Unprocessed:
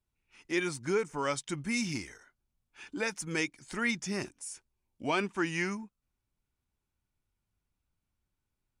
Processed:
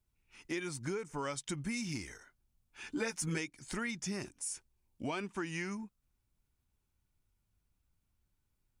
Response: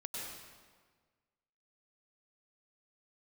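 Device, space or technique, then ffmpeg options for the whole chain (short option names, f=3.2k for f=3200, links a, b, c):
ASMR close-microphone chain: -filter_complex "[0:a]lowshelf=f=160:g=6,acompressor=threshold=-35dB:ratio=6,highshelf=f=6.6k:g=4.5,asettb=1/sr,asplit=3[a][b][c];[a]atrim=end=2.834[d];[b]atrim=start=2.83:end=3.38,asetpts=PTS-STARTPTS,afade=t=in:d=0.004:c=qsin,afade=t=out:st=0.546:d=0.004:c=qsin,asplit=2[e][f];[f]adelay=13,volume=-2dB[g];[e][g]amix=inputs=2:normalize=0,atrim=end_sample=24255[h];[c]atrim=start=3.376[i];[d][h]acrossfade=d=0.004:c1=hsin:c2=qsin[j];[j][i]acrossfade=d=0.004:c1=qsin:c2=hsin"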